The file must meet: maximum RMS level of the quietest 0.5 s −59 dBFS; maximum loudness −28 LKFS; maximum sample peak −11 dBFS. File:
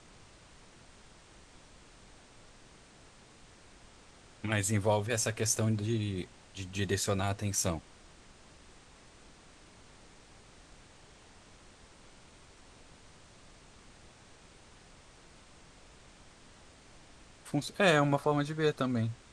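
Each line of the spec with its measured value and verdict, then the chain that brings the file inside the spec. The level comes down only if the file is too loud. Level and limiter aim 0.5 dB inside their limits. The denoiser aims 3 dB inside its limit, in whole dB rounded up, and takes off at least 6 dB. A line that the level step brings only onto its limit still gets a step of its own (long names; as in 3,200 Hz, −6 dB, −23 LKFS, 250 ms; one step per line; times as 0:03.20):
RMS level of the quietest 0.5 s −57 dBFS: out of spec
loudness −31.5 LKFS: in spec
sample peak −12.5 dBFS: in spec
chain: broadband denoise 6 dB, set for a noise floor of −57 dBFS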